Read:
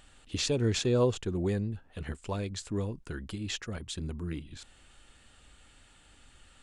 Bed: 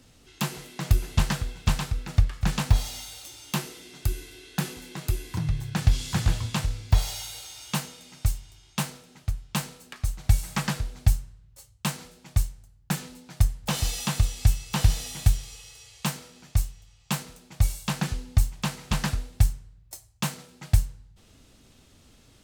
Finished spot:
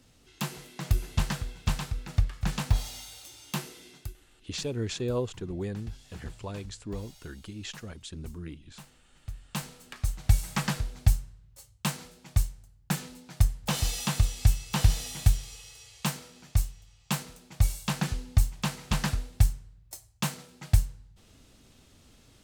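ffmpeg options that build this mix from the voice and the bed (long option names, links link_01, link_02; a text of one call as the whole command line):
ffmpeg -i stem1.wav -i stem2.wav -filter_complex "[0:a]adelay=4150,volume=-4dB[link_01];[1:a]volume=15dB,afade=type=out:start_time=3.88:duration=0.26:silence=0.149624,afade=type=in:start_time=9.07:duration=0.89:silence=0.105925[link_02];[link_01][link_02]amix=inputs=2:normalize=0" out.wav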